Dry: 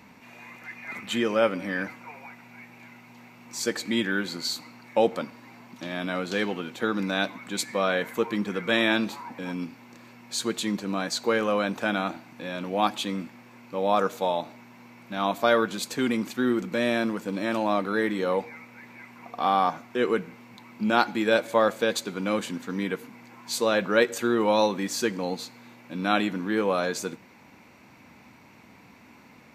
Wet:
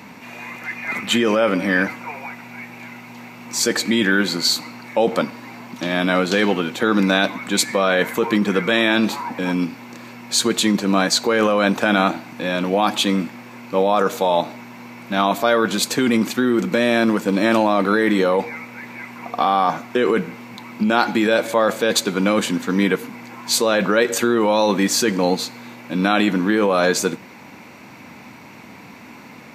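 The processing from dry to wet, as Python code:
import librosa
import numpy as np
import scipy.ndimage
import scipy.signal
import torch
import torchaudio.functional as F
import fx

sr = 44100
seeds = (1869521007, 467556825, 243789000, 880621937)

p1 = scipy.signal.sosfilt(scipy.signal.butter(2, 100.0, 'highpass', fs=sr, output='sos'), x)
p2 = fx.over_compress(p1, sr, threshold_db=-27.0, ratio=-0.5)
p3 = p1 + (p2 * 10.0 ** (2.0 / 20.0))
y = p3 * 10.0 ** (3.0 / 20.0)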